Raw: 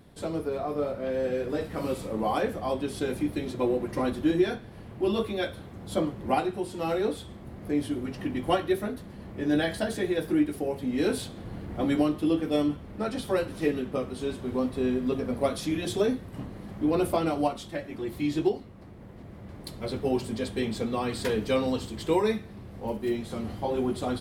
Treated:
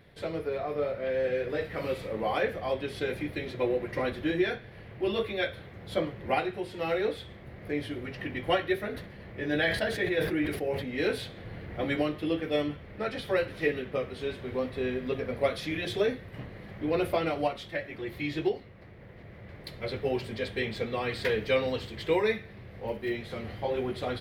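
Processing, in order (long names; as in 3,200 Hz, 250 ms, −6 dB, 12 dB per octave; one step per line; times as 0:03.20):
octave-band graphic EQ 125/250/500/1,000/2,000/4,000/8,000 Hz +4/−6/+6/−3/+12/+4/−9 dB
0:08.87–0:10.85: level that may fall only so fast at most 64 dB per second
level −4.5 dB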